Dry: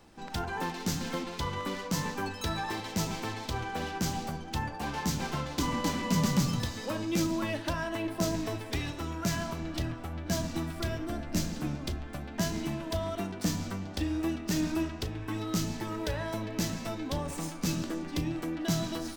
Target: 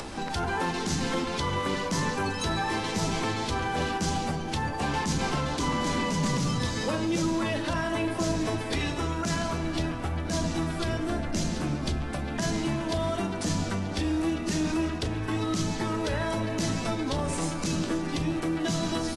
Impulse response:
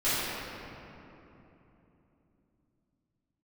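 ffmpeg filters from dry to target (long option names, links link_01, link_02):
-filter_complex "[0:a]acrossover=split=250|2100[link_01][link_02][link_03];[link_02]acrusher=bits=5:mode=log:mix=0:aa=0.000001[link_04];[link_01][link_04][link_03]amix=inputs=3:normalize=0,acompressor=mode=upward:threshold=-32dB:ratio=2.5,alimiter=level_in=1dB:limit=-24dB:level=0:latency=1:release=19,volume=-1dB,bandreject=frequency=60:width_type=h:width=6,bandreject=frequency=120:width_type=h:width=6,bandreject=frequency=180:width_type=h:width=6,bandreject=frequency=240:width_type=h:width=6,bandreject=frequency=300:width_type=h:width=6,aeval=exprs='0.0708*(cos(1*acos(clip(val(0)/0.0708,-1,1)))-cos(1*PI/2))+0.00355*(cos(5*acos(clip(val(0)/0.0708,-1,1)))-cos(5*PI/2))':channel_layout=same,asplit=2[link_05][link_06];[link_06]adelay=294,lowpass=frequency=3400:poles=1,volume=-17.5dB,asplit=2[link_07][link_08];[link_08]adelay=294,lowpass=frequency=3400:poles=1,volume=0.48,asplit=2[link_09][link_10];[link_10]adelay=294,lowpass=frequency=3400:poles=1,volume=0.48,asplit=2[link_11][link_12];[link_12]adelay=294,lowpass=frequency=3400:poles=1,volume=0.48[link_13];[link_05][link_07][link_09][link_11][link_13]amix=inputs=5:normalize=0,asplit=2[link_14][link_15];[1:a]atrim=start_sample=2205,adelay=82[link_16];[link_15][link_16]afir=irnorm=-1:irlink=0,volume=-30.5dB[link_17];[link_14][link_17]amix=inputs=2:normalize=0,volume=4.5dB" -ar 24000 -c:a aac -b:a 32k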